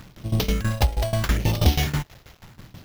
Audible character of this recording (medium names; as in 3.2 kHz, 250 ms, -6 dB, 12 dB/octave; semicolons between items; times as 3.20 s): phasing stages 4, 0.78 Hz, lowest notch 240–1700 Hz; a quantiser's noise floor 8-bit, dither none; tremolo saw down 6.2 Hz, depth 90%; aliases and images of a low sample rate 8.9 kHz, jitter 0%